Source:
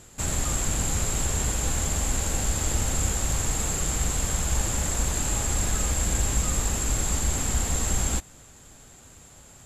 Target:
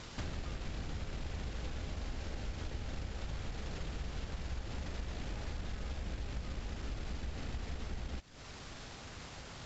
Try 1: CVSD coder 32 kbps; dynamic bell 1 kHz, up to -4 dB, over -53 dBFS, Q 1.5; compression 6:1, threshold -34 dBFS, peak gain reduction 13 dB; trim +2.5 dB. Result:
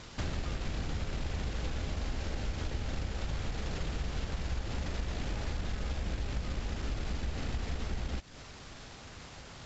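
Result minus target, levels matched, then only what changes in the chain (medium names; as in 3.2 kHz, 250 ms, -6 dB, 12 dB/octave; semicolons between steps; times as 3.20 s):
compression: peak gain reduction -5.5 dB
change: compression 6:1, threshold -40.5 dBFS, peak gain reduction 18.5 dB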